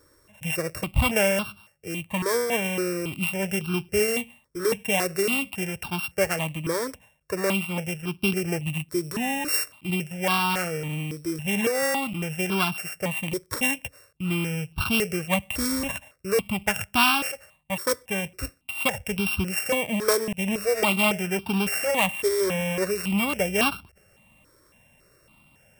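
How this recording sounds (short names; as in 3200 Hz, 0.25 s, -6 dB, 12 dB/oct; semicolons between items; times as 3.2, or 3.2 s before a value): a buzz of ramps at a fixed pitch in blocks of 16 samples; notches that jump at a steady rate 3.6 Hz 760–1900 Hz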